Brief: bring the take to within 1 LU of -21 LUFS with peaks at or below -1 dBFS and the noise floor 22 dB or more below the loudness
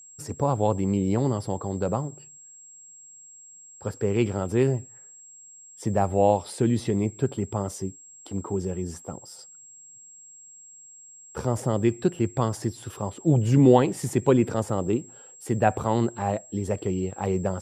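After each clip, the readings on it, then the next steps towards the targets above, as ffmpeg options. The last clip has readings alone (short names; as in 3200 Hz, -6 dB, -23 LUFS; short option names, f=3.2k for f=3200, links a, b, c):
steady tone 7600 Hz; tone level -46 dBFS; loudness -25.5 LUFS; peak -4.0 dBFS; loudness target -21.0 LUFS
-> -af "bandreject=f=7.6k:w=30"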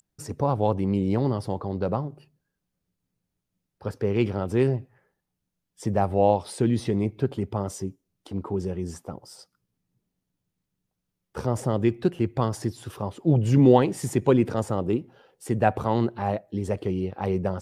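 steady tone none; loudness -25.5 LUFS; peak -4.0 dBFS; loudness target -21.0 LUFS
-> -af "volume=4.5dB,alimiter=limit=-1dB:level=0:latency=1"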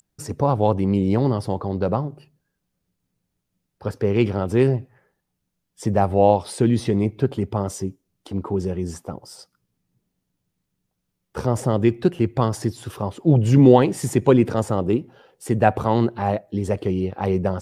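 loudness -21.0 LUFS; peak -1.0 dBFS; noise floor -78 dBFS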